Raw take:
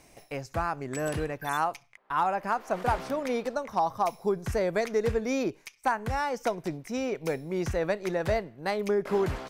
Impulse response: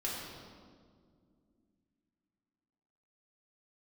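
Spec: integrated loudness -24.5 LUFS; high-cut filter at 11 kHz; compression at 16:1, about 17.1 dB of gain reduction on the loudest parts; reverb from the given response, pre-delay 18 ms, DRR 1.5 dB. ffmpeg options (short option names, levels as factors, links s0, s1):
-filter_complex "[0:a]lowpass=11000,acompressor=threshold=0.0112:ratio=16,asplit=2[s0][s1];[1:a]atrim=start_sample=2205,adelay=18[s2];[s1][s2]afir=irnorm=-1:irlink=0,volume=0.562[s3];[s0][s3]amix=inputs=2:normalize=0,volume=6.68"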